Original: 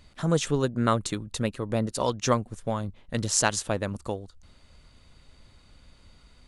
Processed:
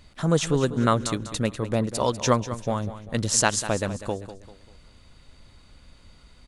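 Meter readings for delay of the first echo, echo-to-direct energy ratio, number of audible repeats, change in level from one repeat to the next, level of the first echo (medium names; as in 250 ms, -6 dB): 196 ms, -12.5 dB, 3, -8.0 dB, -13.0 dB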